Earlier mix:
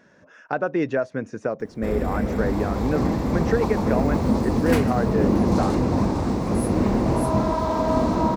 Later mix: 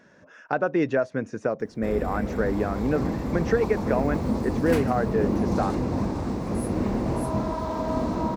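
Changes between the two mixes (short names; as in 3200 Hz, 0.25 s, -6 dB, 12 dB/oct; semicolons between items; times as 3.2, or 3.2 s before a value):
first sound -5.0 dB; second sound -6.5 dB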